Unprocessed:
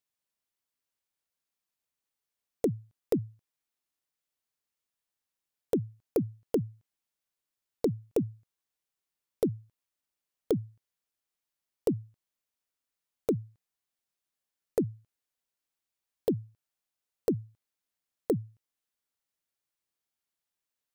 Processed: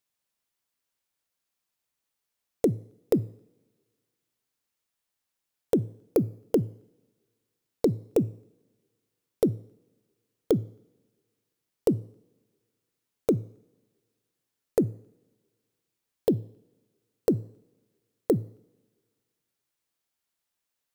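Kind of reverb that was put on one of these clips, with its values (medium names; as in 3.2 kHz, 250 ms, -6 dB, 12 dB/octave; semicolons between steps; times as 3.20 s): two-slope reverb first 0.69 s, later 1.8 s, from -16 dB, DRR 19.5 dB; trim +4.5 dB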